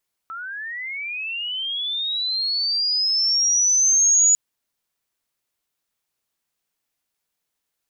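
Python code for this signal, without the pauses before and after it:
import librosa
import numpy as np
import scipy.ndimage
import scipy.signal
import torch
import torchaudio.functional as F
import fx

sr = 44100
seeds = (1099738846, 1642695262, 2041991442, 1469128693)

y = fx.chirp(sr, length_s=4.05, from_hz=1300.0, to_hz=6900.0, law='linear', from_db=-30.0, to_db=-12.0)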